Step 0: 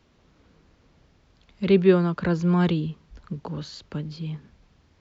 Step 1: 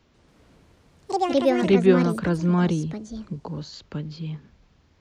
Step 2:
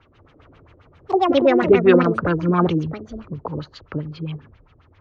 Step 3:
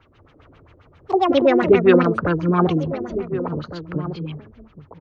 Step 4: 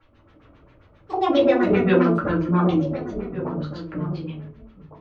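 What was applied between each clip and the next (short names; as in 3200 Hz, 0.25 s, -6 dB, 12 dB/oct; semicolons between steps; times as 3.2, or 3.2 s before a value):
spectral gain 2.66–3.73, 1100–3900 Hz -6 dB; echoes that change speed 0.142 s, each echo +6 st, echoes 2
thirty-one-band EQ 100 Hz +10 dB, 200 Hz -10 dB, 1250 Hz +7 dB, 6300 Hz +5 dB; LFO low-pass sine 7.5 Hz 360–3200 Hz; gain +3.5 dB
outdoor echo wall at 250 m, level -12 dB
shoebox room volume 120 m³, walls furnished, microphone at 2.3 m; gain -8.5 dB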